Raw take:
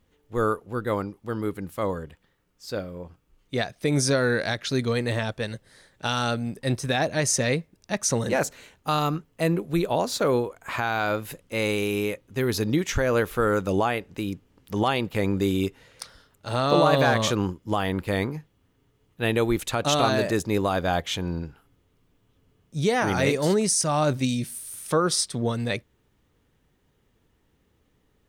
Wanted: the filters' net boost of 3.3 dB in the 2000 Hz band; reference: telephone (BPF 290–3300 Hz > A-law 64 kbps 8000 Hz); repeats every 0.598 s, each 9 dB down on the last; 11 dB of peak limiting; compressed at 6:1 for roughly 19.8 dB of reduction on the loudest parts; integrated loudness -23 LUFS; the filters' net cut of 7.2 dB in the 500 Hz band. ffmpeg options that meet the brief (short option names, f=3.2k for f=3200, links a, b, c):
-af "equalizer=f=500:t=o:g=-8.5,equalizer=f=2k:t=o:g=5.5,acompressor=threshold=-40dB:ratio=6,alimiter=level_in=10.5dB:limit=-24dB:level=0:latency=1,volume=-10.5dB,highpass=290,lowpass=3.3k,aecho=1:1:598|1196|1794|2392:0.355|0.124|0.0435|0.0152,volume=25dB" -ar 8000 -c:a pcm_alaw